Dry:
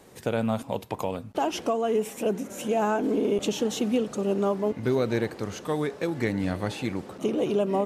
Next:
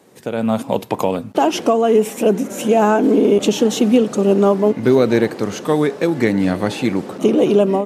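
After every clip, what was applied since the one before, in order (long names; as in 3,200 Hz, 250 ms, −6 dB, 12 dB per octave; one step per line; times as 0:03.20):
high-pass filter 200 Hz 12 dB per octave
low-shelf EQ 280 Hz +8 dB
automatic gain control gain up to 12 dB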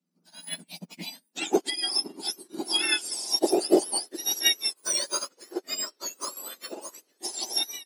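frequency axis turned over on the octave scale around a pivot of 1,500 Hz
high-pass filter sweep 160 Hz → 380 Hz, 0:00.62–0:01.89
expander for the loud parts 2.5 to 1, over −35 dBFS
level −1.5 dB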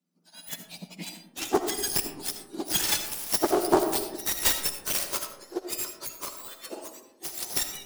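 phase distortion by the signal itself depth 0.61 ms
comb and all-pass reverb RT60 0.96 s, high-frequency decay 0.3×, pre-delay 35 ms, DRR 7 dB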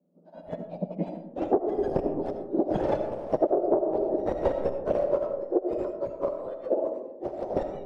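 low-pass with resonance 570 Hz, resonance Q 4.9
downward compressor 16 to 1, threshold −29 dBFS, peak gain reduction 19 dB
level +9 dB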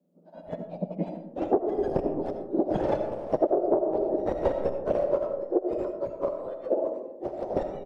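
single-tap delay 87 ms −22 dB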